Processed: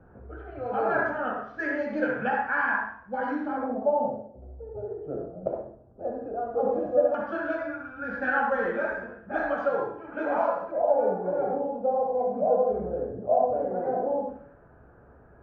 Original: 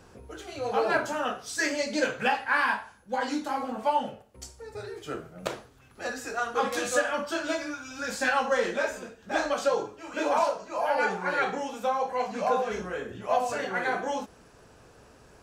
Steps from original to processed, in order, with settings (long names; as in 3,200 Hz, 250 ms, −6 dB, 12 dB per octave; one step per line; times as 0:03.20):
low-pass that shuts in the quiet parts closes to 1,500 Hz, open at −23 dBFS
high-shelf EQ 2,600 Hz −9.5 dB
auto-filter low-pass square 0.14 Hz 610–1,600 Hz
convolution reverb RT60 0.55 s, pre-delay 54 ms, DRR 1 dB
level −7 dB